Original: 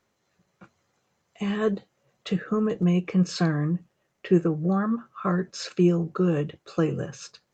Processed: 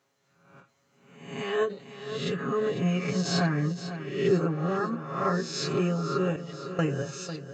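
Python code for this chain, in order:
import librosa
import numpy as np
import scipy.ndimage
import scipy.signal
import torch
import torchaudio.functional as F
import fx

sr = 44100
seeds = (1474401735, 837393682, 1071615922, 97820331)

p1 = fx.spec_swells(x, sr, rise_s=0.78)
p2 = scipy.signal.sosfilt(scipy.signal.butter(2, 89.0, 'highpass', fs=sr, output='sos'), p1)
p3 = fx.low_shelf(p2, sr, hz=320.0, db=-3.5)
p4 = p3 + 0.86 * np.pad(p3, (int(7.3 * sr / 1000.0), 0))[:len(p3)]
p5 = fx.level_steps(p4, sr, step_db=20, at=(6.36, 6.79))
p6 = p5 + fx.echo_feedback(p5, sr, ms=499, feedback_pct=51, wet_db=-12.0, dry=0)
p7 = fx.end_taper(p6, sr, db_per_s=170.0)
y = p7 * librosa.db_to_amplitude(-3.5)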